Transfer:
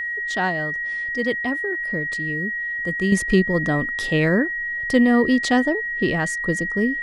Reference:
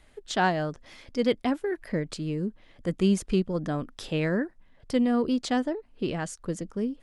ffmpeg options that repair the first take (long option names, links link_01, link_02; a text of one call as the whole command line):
ffmpeg -i in.wav -af "bandreject=frequency=1900:width=30,asetnsamples=nb_out_samples=441:pad=0,asendcmd='3.12 volume volume -7.5dB',volume=0dB" out.wav